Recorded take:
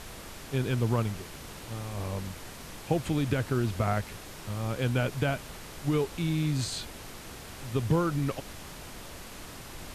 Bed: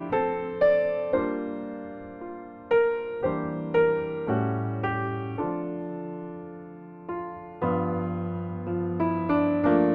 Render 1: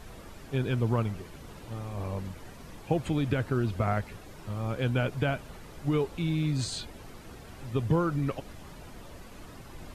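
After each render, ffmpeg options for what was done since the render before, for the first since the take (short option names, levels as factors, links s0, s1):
-af "afftdn=nr=10:nf=-45"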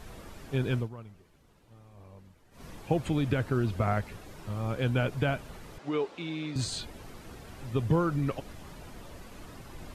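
-filter_complex "[0:a]asettb=1/sr,asplit=3[s0][s1][s2];[s0]atrim=end=5.784[s3];[s1]atrim=start=5.78:end=6.56,asetpts=PTS-STARTPTS,afade=t=in:d=0.004:c=qsin,afade=t=out:st=0.776:d=0.004:c=qsin,highpass=320,lowpass=5400[s4];[s2]atrim=start=6.556[s5];[s3][s4]acrossfade=d=0.004:c1=hsin:c2=qsin[s6];[s6][s5]acrossfade=d=0.004:c1=qsin:c2=hsin,asplit=3[s7][s8][s9];[s7]atrim=end=0.89,asetpts=PTS-STARTPTS,afade=t=out:st=0.76:d=0.13:silence=0.141254[s10];[s8]atrim=start=0.89:end=2.51,asetpts=PTS-STARTPTS,volume=0.141[s11];[s9]atrim=start=2.51,asetpts=PTS-STARTPTS,afade=t=in:d=0.13:silence=0.141254[s12];[s10][s11][s12]concat=n=3:v=0:a=1"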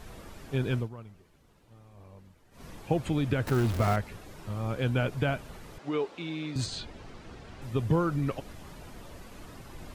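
-filter_complex "[0:a]asettb=1/sr,asplit=3[s0][s1][s2];[s0]atrim=end=3.474[s3];[s1]atrim=start=3.47:end=3.96,asetpts=PTS-STARTPTS,afade=t=in:d=0.004:c=qsin,afade=t=out:st=0.486:d=0.004:c=qsin,aeval=exprs='val(0)+0.5*0.0316*sgn(val(0))':c=same[s4];[s2]atrim=start=3.956[s5];[s3][s4]acrossfade=d=0.004:c1=hsin:c2=qsin[s6];[s6][s5]acrossfade=d=0.004:c1=qsin:c2=hsin,asettb=1/sr,asplit=3[s7][s8][s9];[s7]atrim=end=6.664[s10];[s8]atrim=start=6.66:end=7.62,asetpts=PTS-STARTPTS,afade=t=in:d=0.004:c=qsin,afade=t=out:st=0.956:d=0.004:c=qsin,lowpass=5700[s11];[s9]atrim=start=7.616[s12];[s10][s11]acrossfade=d=0.004:c1=hsin:c2=qsin[s13];[s13][s12]acrossfade=d=0.004:c1=qsin:c2=hsin"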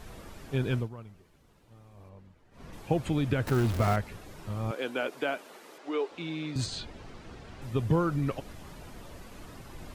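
-filter_complex "[0:a]asettb=1/sr,asplit=3[s0][s1][s2];[s0]atrim=end=2.094[s3];[s1]atrim=start=2.09:end=2.73,asetpts=PTS-STARTPTS,afade=t=in:d=0.004:c=qsin,afade=t=out:st=0.636:d=0.004:c=qsin,lowpass=f=3200:p=1[s4];[s2]atrim=start=2.726[s5];[s3][s4]acrossfade=d=0.004:c1=hsin:c2=qsin[s6];[s6][s5]acrossfade=d=0.004:c1=qsin:c2=hsin,asettb=1/sr,asplit=3[s7][s8][s9];[s7]atrim=end=4.714[s10];[s8]atrim=start=4.71:end=6.11,asetpts=PTS-STARTPTS,afade=t=in:d=0.004:c=qsin,afade=t=out:st=1.396:d=0.004:c=qsin,highpass=f=290:w=0.5412,highpass=f=290:w=1.3066[s11];[s9]atrim=start=6.106[s12];[s10][s11]acrossfade=d=0.004:c1=hsin:c2=qsin[s13];[s13][s12]acrossfade=d=0.004:c1=qsin:c2=hsin"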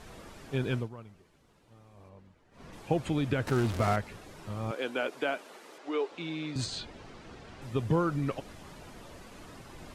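-af "lowpass=11000,lowshelf=f=110:g=-7"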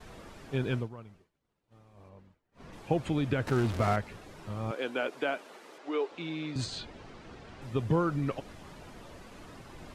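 -af "highshelf=f=5900:g=-5,agate=range=0.0224:threshold=0.00224:ratio=3:detection=peak"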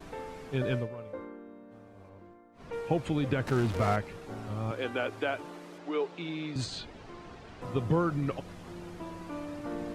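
-filter_complex "[1:a]volume=0.15[s0];[0:a][s0]amix=inputs=2:normalize=0"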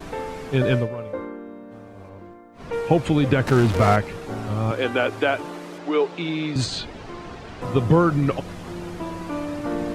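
-af "volume=3.35"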